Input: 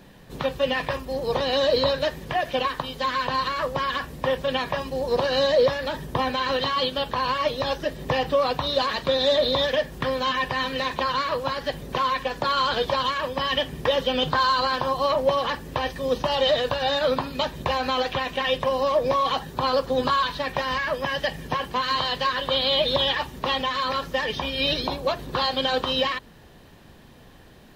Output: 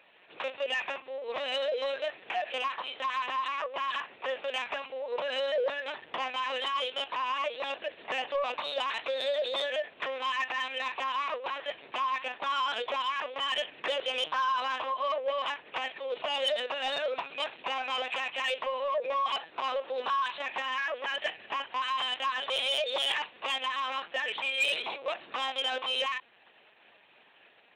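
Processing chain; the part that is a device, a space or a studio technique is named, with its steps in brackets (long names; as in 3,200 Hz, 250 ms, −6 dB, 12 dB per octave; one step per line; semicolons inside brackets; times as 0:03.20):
talking toy (linear-prediction vocoder at 8 kHz pitch kept; high-pass filter 590 Hz 12 dB per octave; parametric band 2,500 Hz +10.5 dB 0.41 octaves; soft clipping −15.5 dBFS, distortion −19 dB)
level −5.5 dB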